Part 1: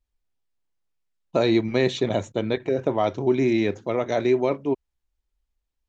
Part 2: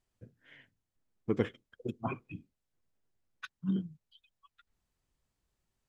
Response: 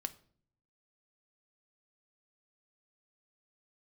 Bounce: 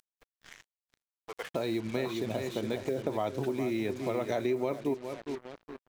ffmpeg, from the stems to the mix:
-filter_complex "[0:a]adelay=200,volume=2.5dB,asplit=3[link_01][link_02][link_03];[link_02]volume=-22dB[link_04];[link_03]volume=-15.5dB[link_05];[1:a]highpass=frequency=620:width=0.5412,highpass=frequency=620:width=1.3066,volume=0dB,asplit=4[link_06][link_07][link_08][link_09];[link_07]volume=-15.5dB[link_10];[link_08]volume=-16dB[link_11];[link_09]apad=whole_len=268270[link_12];[link_01][link_12]sidechaincompress=threshold=-48dB:ratio=4:attack=6.9:release=1310[link_13];[2:a]atrim=start_sample=2205[link_14];[link_04][link_10]amix=inputs=2:normalize=0[link_15];[link_15][link_14]afir=irnorm=-1:irlink=0[link_16];[link_05][link_11]amix=inputs=2:normalize=0,aecho=0:1:413|826|1239|1652:1|0.27|0.0729|0.0197[link_17];[link_13][link_06][link_16][link_17]amix=inputs=4:normalize=0,acompressor=mode=upward:threshold=-40dB:ratio=2.5,acrusher=bits=6:mix=0:aa=0.5,acompressor=threshold=-29dB:ratio=4"

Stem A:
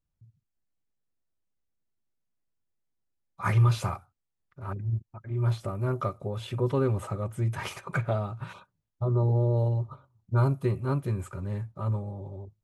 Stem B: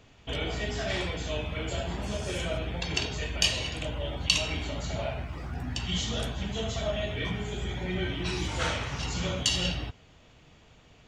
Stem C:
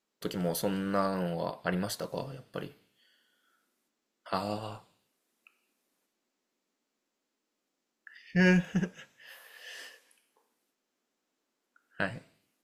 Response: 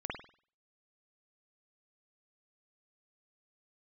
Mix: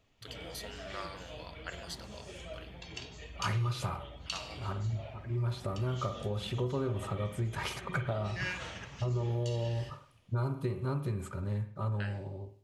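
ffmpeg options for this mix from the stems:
-filter_complex "[0:a]equalizer=frequency=4100:width=1.5:gain=5,volume=-3.5dB,asplit=2[link_01][link_02];[link_02]volume=-7.5dB[link_03];[1:a]bandreject=frequency=1500:width=12,flanger=delay=1.5:depth=7.7:regen=62:speed=1.2:shape=sinusoidal,volume=-10dB[link_04];[2:a]bandpass=frequency=3600:width_type=q:width=0.76:csg=0,volume=-4.5dB,asplit=2[link_05][link_06];[link_06]volume=-11dB[link_07];[3:a]atrim=start_sample=2205[link_08];[link_03][link_07]amix=inputs=2:normalize=0[link_09];[link_09][link_08]afir=irnorm=-1:irlink=0[link_10];[link_01][link_04][link_05][link_10]amix=inputs=4:normalize=0,acompressor=threshold=-30dB:ratio=4"

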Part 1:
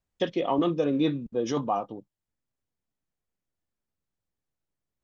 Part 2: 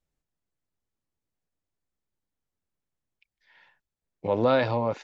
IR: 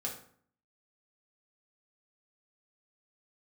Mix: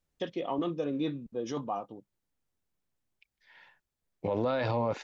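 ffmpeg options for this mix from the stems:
-filter_complex "[0:a]volume=-7dB[link_01];[1:a]volume=1.5dB[link_02];[link_01][link_02]amix=inputs=2:normalize=0,alimiter=limit=-21.5dB:level=0:latency=1:release=31"

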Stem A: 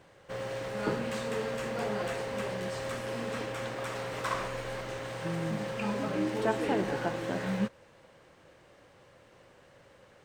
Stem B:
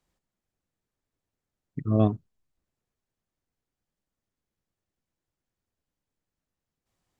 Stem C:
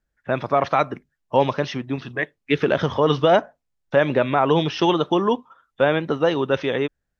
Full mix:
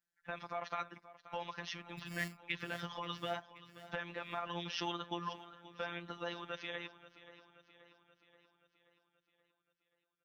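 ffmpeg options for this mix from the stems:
ffmpeg -i stem1.wav -i stem2.wav -i stem3.wav -filter_complex "[1:a]acrusher=samples=18:mix=1:aa=0.000001,adelay=200,volume=-12dB,asplit=2[link_01][link_02];[link_02]volume=-9dB[link_03];[2:a]highpass=220,acompressor=threshold=-28dB:ratio=2.5,volume=-2.5dB,asplit=2[link_04][link_05];[link_05]volume=-16.5dB[link_06];[link_03][link_06]amix=inputs=2:normalize=0,aecho=0:1:529|1058|1587|2116|2645|3174|3703|4232:1|0.56|0.314|0.176|0.0983|0.0551|0.0308|0.0173[link_07];[link_01][link_04][link_07]amix=inputs=3:normalize=0,equalizer=frequency=420:width_type=o:width=1.9:gain=-13.5,afftfilt=real='hypot(re,im)*cos(PI*b)':imag='0':win_size=1024:overlap=0.75" out.wav

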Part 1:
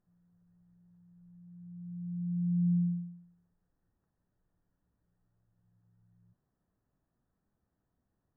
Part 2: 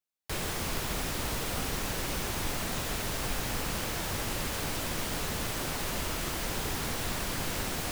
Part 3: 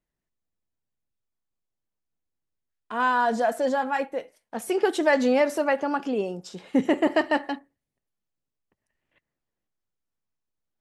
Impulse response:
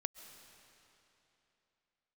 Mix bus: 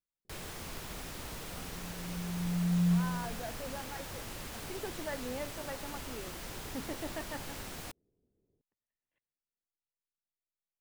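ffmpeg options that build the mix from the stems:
-filter_complex "[0:a]lowpass=frequency=420:width_type=q:width=4.8,adelay=250,volume=0dB[link_01];[1:a]volume=-10dB[link_02];[2:a]volume=-19.5dB,asplit=2[link_03][link_04];[link_04]apad=whole_len=384210[link_05];[link_01][link_05]sidechaincompress=threshold=-45dB:ratio=8:attack=16:release=390[link_06];[link_06][link_02][link_03]amix=inputs=3:normalize=0"

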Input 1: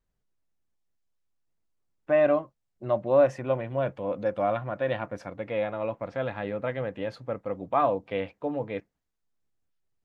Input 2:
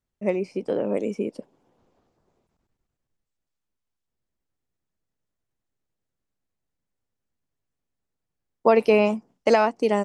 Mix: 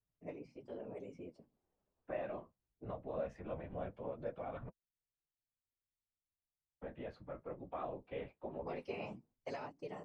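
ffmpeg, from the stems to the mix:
ffmpeg -i stem1.wav -i stem2.wav -filter_complex "[0:a]lowpass=frequency=2000:poles=1,volume=-2dB,asplit=3[link_01][link_02][link_03];[link_01]atrim=end=4.69,asetpts=PTS-STARTPTS,afade=type=out:start_time=4.686:duration=0.004:curve=hsin[link_04];[link_02]atrim=start=4.69:end=6.82,asetpts=PTS-STARTPTS,volume=0[link_05];[link_03]atrim=start=6.82,asetpts=PTS-STARTPTS,afade=type=in:duration=0.004:curve=hsin[link_06];[link_04][link_05][link_06]concat=n=3:v=0:a=1[link_07];[1:a]lowpass=6300,bandreject=frequency=50:width_type=h:width=6,bandreject=frequency=100:width_type=h:width=6,bandreject=frequency=150:width_type=h:width=6,bandreject=frequency=200:width_type=h:width=6,bandreject=frequency=250:width_type=h:width=6,bandreject=frequency=300:width_type=h:width=6,dynaudnorm=framelen=110:gausssize=7:maxgain=3.5dB,volume=-15dB[link_08];[link_07][link_08]amix=inputs=2:normalize=0,acrossover=split=150|680|2300[link_09][link_10][link_11][link_12];[link_10]acompressor=threshold=-34dB:ratio=4[link_13];[link_11]acompressor=threshold=-38dB:ratio=4[link_14];[link_09][link_13][link_14][link_12]amix=inputs=4:normalize=0,afftfilt=real='hypot(re,im)*cos(2*PI*random(0))':imag='hypot(re,im)*sin(2*PI*random(1))':win_size=512:overlap=0.75,flanger=delay=6.5:depth=9.8:regen=-35:speed=0.2:shape=sinusoidal" out.wav

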